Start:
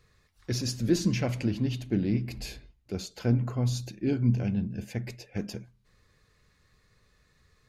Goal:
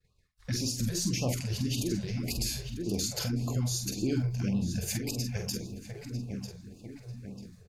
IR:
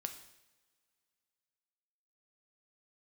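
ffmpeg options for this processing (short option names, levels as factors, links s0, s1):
-filter_complex "[0:a]lowshelf=f=70:g=5.5,bandreject=f=46.49:t=h:w=4,bandreject=f=92.98:t=h:w=4,bandreject=f=139.47:t=h:w=4,bandreject=f=185.96:t=h:w=4,bandreject=f=232.45:t=h:w=4,bandreject=f=278.94:t=h:w=4,bandreject=f=325.43:t=h:w=4,bandreject=f=371.92:t=h:w=4,bandreject=f=418.41:t=h:w=4,bandreject=f=464.9:t=h:w=4,bandreject=f=511.39:t=h:w=4,bandreject=f=557.88:t=h:w=4,bandreject=f=604.37:t=h:w=4,bandreject=f=650.86:t=h:w=4,bandreject=f=697.35:t=h:w=4,bandreject=f=743.84:t=h:w=4,bandreject=f=790.33:t=h:w=4,bandreject=f=836.82:t=h:w=4,bandreject=f=883.31:t=h:w=4,bandreject=f=929.8:t=h:w=4,bandreject=f=976.29:t=h:w=4,bandreject=f=1022.78:t=h:w=4,bandreject=f=1069.27:t=h:w=4,bandreject=f=1115.76:t=h:w=4,bandreject=f=1162.25:t=h:w=4,bandreject=f=1208.74:t=h:w=4,bandreject=f=1255.23:t=h:w=4,bandreject=f=1301.72:t=h:w=4,bandreject=f=1348.21:t=h:w=4,bandreject=f=1394.7:t=h:w=4,bandreject=f=1441.19:t=h:w=4,bandreject=f=1487.68:t=h:w=4,acrossover=split=5400[s0][s1];[s1]dynaudnorm=f=540:g=3:m=5.96[s2];[s0][s2]amix=inputs=2:normalize=0,agate=range=0.0224:threshold=0.00251:ratio=3:detection=peak,asplit=2[s3][s4];[s4]adelay=944,lowpass=f=3000:p=1,volume=0.237,asplit=2[s5][s6];[s6]adelay=944,lowpass=f=3000:p=1,volume=0.53,asplit=2[s7][s8];[s8]adelay=944,lowpass=f=3000:p=1,volume=0.53,asplit=2[s9][s10];[s10]adelay=944,lowpass=f=3000:p=1,volume=0.53,asplit=2[s11][s12];[s12]adelay=944,lowpass=f=3000:p=1,volume=0.53[s13];[s3][s5][s7][s9][s11][s13]amix=inputs=6:normalize=0,acompressor=threshold=0.0355:ratio=6,alimiter=level_in=1.26:limit=0.0631:level=0:latency=1:release=129,volume=0.794,asplit=2[s14][s15];[s15]adelay=46,volume=0.501[s16];[s14][s16]amix=inputs=2:normalize=0,afftfilt=real='re*(1-between(b*sr/1024,240*pow(1800/240,0.5+0.5*sin(2*PI*1.8*pts/sr))/1.41,240*pow(1800/240,0.5+0.5*sin(2*PI*1.8*pts/sr))*1.41))':imag='im*(1-between(b*sr/1024,240*pow(1800/240,0.5+0.5*sin(2*PI*1.8*pts/sr))/1.41,240*pow(1800/240,0.5+0.5*sin(2*PI*1.8*pts/sr))*1.41))':win_size=1024:overlap=0.75,volume=1.68"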